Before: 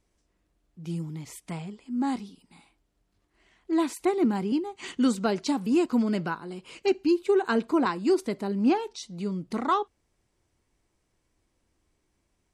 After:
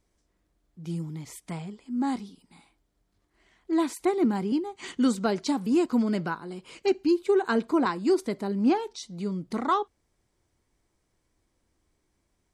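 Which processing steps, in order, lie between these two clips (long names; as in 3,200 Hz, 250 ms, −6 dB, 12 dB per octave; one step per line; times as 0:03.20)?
parametric band 2,700 Hz −5 dB 0.2 octaves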